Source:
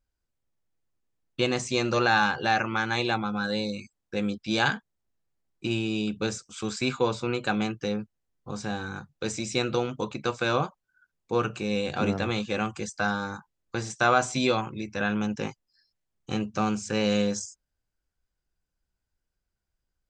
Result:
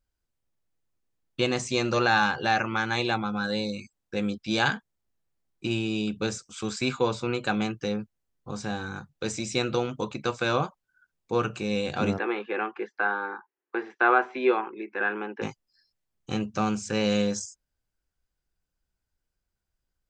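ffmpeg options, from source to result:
-filter_complex "[0:a]asplit=3[s0][s1][s2];[s0]afade=t=out:st=12.17:d=0.02[s3];[s1]highpass=f=320:w=0.5412,highpass=f=320:w=1.3066,equalizer=f=380:t=q:w=4:g=9,equalizer=f=590:t=q:w=4:g=-8,equalizer=f=870:t=q:w=4:g=4,equalizer=f=1700:t=q:w=4:g=5,lowpass=f=2500:w=0.5412,lowpass=f=2500:w=1.3066,afade=t=in:st=12.17:d=0.02,afade=t=out:st=15.41:d=0.02[s4];[s2]afade=t=in:st=15.41:d=0.02[s5];[s3][s4][s5]amix=inputs=3:normalize=0"

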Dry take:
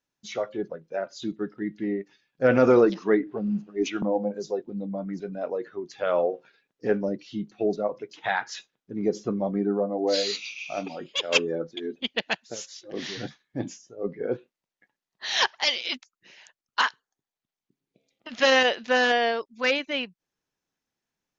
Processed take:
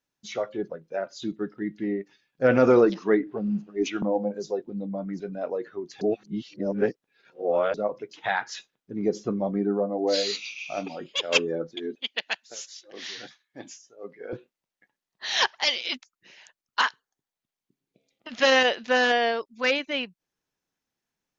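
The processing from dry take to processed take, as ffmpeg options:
-filter_complex "[0:a]asettb=1/sr,asplit=3[s0][s1][s2];[s0]atrim=end=11.954[s3];[s1]atrim=start=11.95:end=14.33,asetpts=PTS-STARTPTS,afade=t=in:d=0.004:c=qsin,afade=t=out:st=2.376:d=0.004:c=qsin,highpass=f=1200:p=1[s4];[s2]atrim=start=14.326[s5];[s3][s4]acrossfade=d=0.004:c1=hsin:c2=qsin[s6];[s6][s5]acrossfade=d=0.004:c1=qsin:c2=hsin,asplit=3[s7][s8][s9];[s7]atrim=end=6.012[s10];[s8]atrim=start=6.008:end=7.742,asetpts=PTS-STARTPTS,areverse[s11];[s9]atrim=start=7.738[s12];[s10][s11]acrossfade=d=0.004:c1=hsin:c2=hsin[s13];[s13][s12]acrossfade=d=0.004:c1=hsin:c2=hsin"

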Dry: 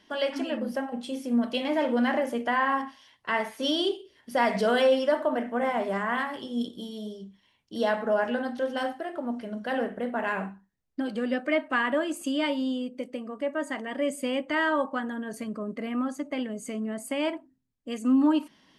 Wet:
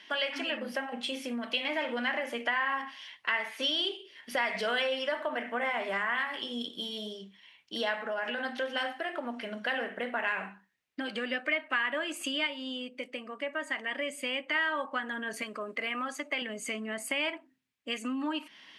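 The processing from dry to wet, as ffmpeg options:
-filter_complex "[0:a]asettb=1/sr,asplit=3[s0][s1][s2];[s0]atrim=end=7.974[s3];[s1]atrim=start=7.97:end=8.45,asetpts=PTS-STARTPTS,afade=t=in:d=0.004:c=qsin,afade=t=out:st=0.476:d=0.004:c=qsin,acompressor=threshold=0.0355:ratio=3:attack=3.2:release=140:knee=1:detection=peak[s4];[s2]atrim=start=8.446[s5];[s3][s4]acrossfade=d=0.004:c1=hsin:c2=qsin[s6];[s6][s5]acrossfade=d=0.004:c1=qsin:c2=hsin,asettb=1/sr,asplit=3[s7][s8][s9];[s7]atrim=end=15.424[s10];[s8]atrim=start=15.42:end=16.42,asetpts=PTS-STARTPTS,afade=t=in:d=0.004:c=qsin,afade=t=out:st=0.996:d=0.004:c=qsin,bass=f=250:g=-11,treble=f=4000:g=2[s11];[s9]atrim=start=16.416[s12];[s10][s11]acrossfade=d=0.004:c1=hsin:c2=qsin[s13];[s13][s12]acrossfade=d=0.004:c1=qsin:c2=hsin,asplit=3[s14][s15][s16];[s14]atrim=end=12.472[s17];[s15]atrim=start=12.468:end=14.552,asetpts=PTS-STARTPTS,volume=0.631[s18];[s16]atrim=start=14.548[s19];[s17][s18]acrossfade=d=0.004:c1=hsin:c2=hsin[s20];[s20][s19]acrossfade=d=0.004:c1=hsin:c2=hsin,equalizer=f=2400:t=o:w=1.7:g=13.5,acompressor=threshold=0.0316:ratio=3,highpass=f=360:p=1"

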